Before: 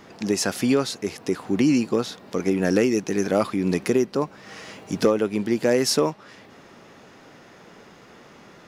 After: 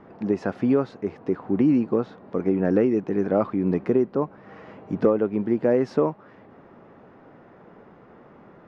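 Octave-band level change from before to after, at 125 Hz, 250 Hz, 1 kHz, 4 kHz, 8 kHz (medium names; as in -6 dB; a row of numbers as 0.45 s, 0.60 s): 0.0 dB, 0.0 dB, -2.0 dB, under -20 dB, under -30 dB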